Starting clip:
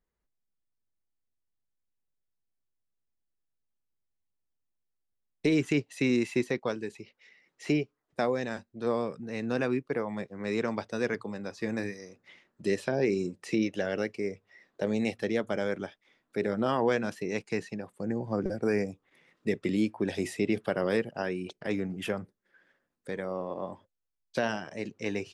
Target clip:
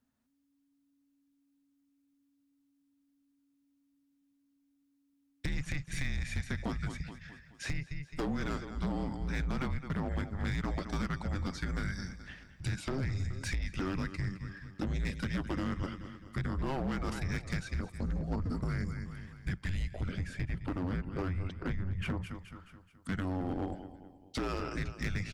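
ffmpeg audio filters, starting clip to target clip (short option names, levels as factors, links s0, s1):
-filter_complex "[0:a]aecho=1:1:213|426|639|852:0.158|0.0761|0.0365|0.0175,asoftclip=type=tanh:threshold=0.158,asettb=1/sr,asplit=3[s0][s1][s2];[s0]atrim=end=20.084[s3];[s1]atrim=start=20.08:end=22.22,asetpts=PTS-STARTPTS,afade=t=in:d=0.004:c=qsin,afade=t=out:st=2.136:d=0.004:c=qsin,lowpass=f=1400:p=1[s4];[s2]atrim=start=22.216[s5];[s3][s4]acrossfade=d=0.004:c1=hsin:c2=qsin[s6];[s6][s5]acrossfade=d=0.004:c1=qsin:c2=hsin,afreqshift=-280,acompressor=threshold=0.0251:ratio=16,asoftclip=type=hard:threshold=0.0211,volume=1.68"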